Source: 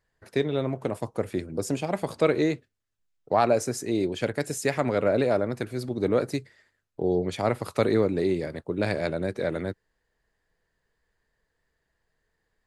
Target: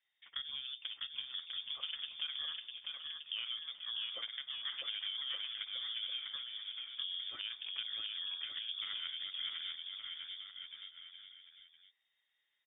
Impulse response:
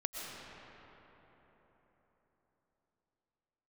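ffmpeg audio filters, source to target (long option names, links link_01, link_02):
-filter_complex "[0:a]lowshelf=frequency=220:gain=-5.5,acompressor=threshold=-33dB:ratio=6,asplit=2[link_01][link_02];[link_02]aecho=0:1:650|1170|1586|1919|2185:0.631|0.398|0.251|0.158|0.1[link_03];[link_01][link_03]amix=inputs=2:normalize=0,lowpass=frequency=3100:width_type=q:width=0.5098,lowpass=frequency=3100:width_type=q:width=0.6013,lowpass=frequency=3100:width_type=q:width=0.9,lowpass=frequency=3100:width_type=q:width=2.563,afreqshift=-3700,volume=-6.5dB"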